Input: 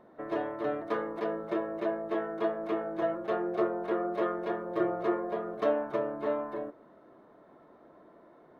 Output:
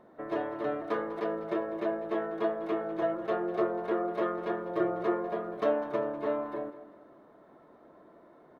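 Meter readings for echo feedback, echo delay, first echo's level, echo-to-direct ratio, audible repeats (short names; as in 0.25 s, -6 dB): 39%, 0.199 s, -15.0 dB, -14.5 dB, 3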